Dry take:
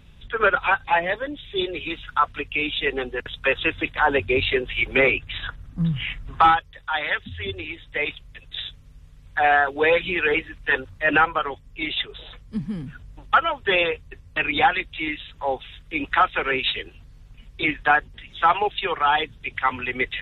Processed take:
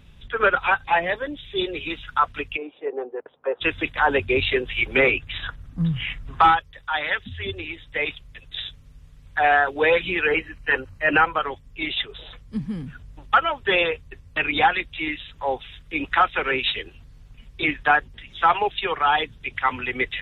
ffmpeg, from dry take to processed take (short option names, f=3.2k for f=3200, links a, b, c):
-filter_complex "[0:a]asplit=3[a][b][c];[a]afade=t=out:st=2.56:d=0.02[d];[b]asuperpass=centerf=580:order=4:qfactor=1,afade=t=in:st=2.56:d=0.02,afade=t=out:st=3.6:d=0.02[e];[c]afade=t=in:st=3.6:d=0.02[f];[d][e][f]amix=inputs=3:normalize=0,asettb=1/sr,asplit=3[g][h][i];[g]atrim=end=10.224[j];[h]atrim=start=10.22:end=11.27,asetpts=PTS-STARTPTS,afade=t=in:d=0.004:c=qsin,afade=t=out:st=1.046:d=0.004:c=qsin,asuperstop=centerf=3500:order=8:qfactor=5.7[k];[i]atrim=start=11.266[l];[j][k]acrossfade=d=0.004:c1=hsin:c2=qsin[m];[m][l]acrossfade=d=0.004:c1=qsin:c2=hsin"